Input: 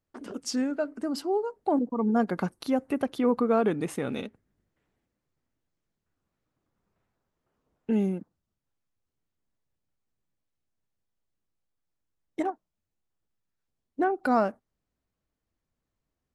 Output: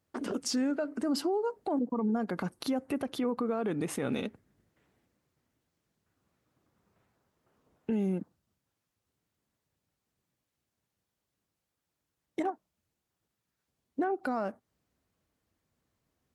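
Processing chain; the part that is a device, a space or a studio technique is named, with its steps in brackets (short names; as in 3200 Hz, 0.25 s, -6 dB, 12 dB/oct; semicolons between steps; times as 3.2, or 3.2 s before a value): podcast mastering chain (HPF 66 Hz; de-esser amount 65%; compressor 4:1, threshold -32 dBFS, peak gain reduction 12 dB; limiter -29 dBFS, peak gain reduction 7.5 dB; gain +6.5 dB; MP3 96 kbps 44100 Hz)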